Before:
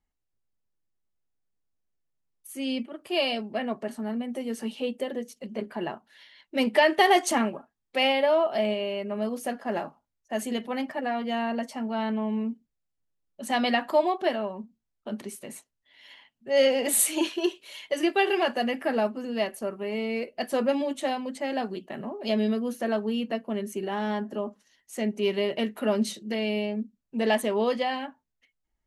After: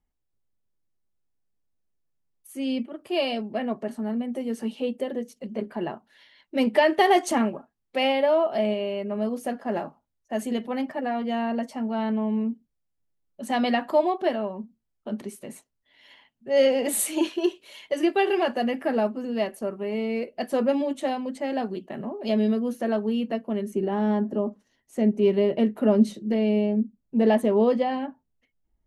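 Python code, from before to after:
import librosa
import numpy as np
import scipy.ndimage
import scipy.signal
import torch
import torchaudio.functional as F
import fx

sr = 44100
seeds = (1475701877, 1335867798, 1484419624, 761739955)

y = fx.tilt_shelf(x, sr, db=fx.steps((0.0, 3.5), (23.69, 8.5)), hz=940.0)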